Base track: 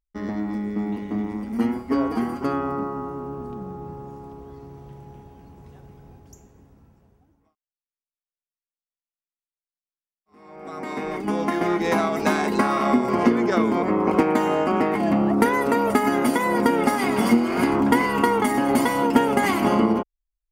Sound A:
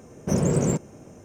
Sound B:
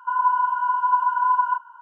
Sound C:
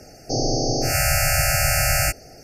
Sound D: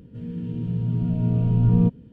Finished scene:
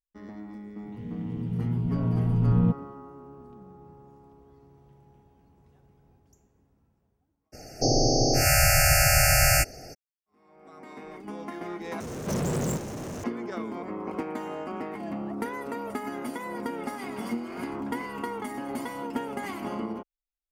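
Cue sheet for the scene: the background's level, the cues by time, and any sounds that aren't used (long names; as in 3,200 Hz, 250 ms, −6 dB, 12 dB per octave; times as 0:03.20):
base track −14 dB
0:00.83: mix in D −4 dB
0:07.52: mix in C −0.5 dB, fades 0.02 s + camcorder AGC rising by 6 dB per second
0:12.00: overwrite with A −12 dB + power curve on the samples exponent 0.35
not used: B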